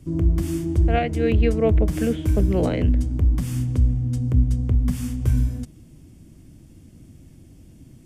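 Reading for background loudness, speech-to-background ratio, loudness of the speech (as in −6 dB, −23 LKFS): −22.5 LKFS, −2.5 dB, −25.0 LKFS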